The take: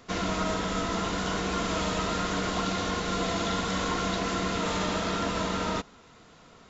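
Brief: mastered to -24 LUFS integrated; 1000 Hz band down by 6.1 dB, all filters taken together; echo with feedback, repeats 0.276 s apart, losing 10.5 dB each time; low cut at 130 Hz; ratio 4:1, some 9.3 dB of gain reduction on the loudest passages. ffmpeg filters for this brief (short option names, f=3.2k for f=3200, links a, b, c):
-af "highpass=130,equalizer=f=1k:t=o:g=-8.5,acompressor=threshold=-39dB:ratio=4,aecho=1:1:276|552|828:0.299|0.0896|0.0269,volume=15dB"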